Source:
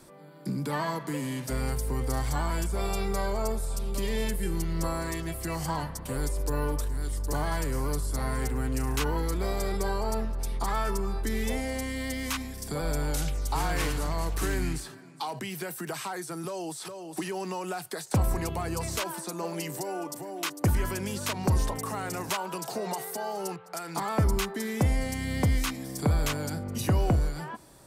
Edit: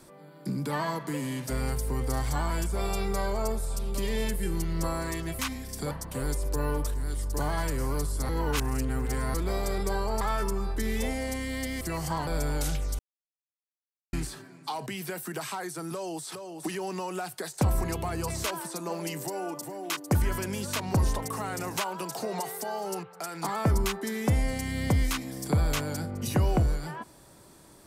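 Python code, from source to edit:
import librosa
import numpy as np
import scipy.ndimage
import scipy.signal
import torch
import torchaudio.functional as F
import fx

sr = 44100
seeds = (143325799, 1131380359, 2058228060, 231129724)

y = fx.edit(x, sr, fx.swap(start_s=5.39, length_s=0.46, other_s=12.28, other_length_s=0.52),
    fx.reverse_span(start_s=8.23, length_s=1.05),
    fx.cut(start_s=10.15, length_s=0.53),
    fx.silence(start_s=13.52, length_s=1.14), tone=tone)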